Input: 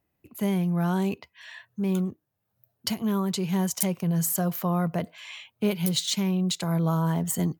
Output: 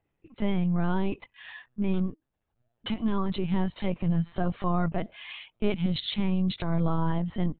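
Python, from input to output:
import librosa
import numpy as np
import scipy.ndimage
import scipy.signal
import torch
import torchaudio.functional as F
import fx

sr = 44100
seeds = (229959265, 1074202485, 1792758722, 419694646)

y = fx.lpc_vocoder(x, sr, seeds[0], excitation='pitch_kept', order=16)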